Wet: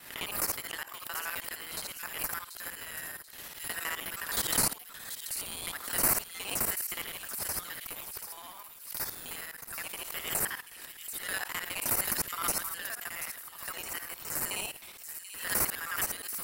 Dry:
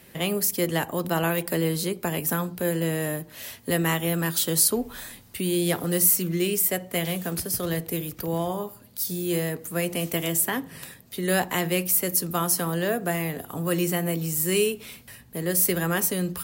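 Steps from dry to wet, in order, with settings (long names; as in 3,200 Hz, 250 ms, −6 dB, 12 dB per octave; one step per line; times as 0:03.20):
reversed piece by piece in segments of 52 ms
high-pass filter 1,200 Hz 24 dB per octave
in parallel at −6.5 dB: decimation without filtering 13×
on the sum: delay with a high-pass on its return 735 ms, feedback 36%, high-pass 2,900 Hz, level −9 dB
background raised ahead of every attack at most 84 dB per second
level −7.5 dB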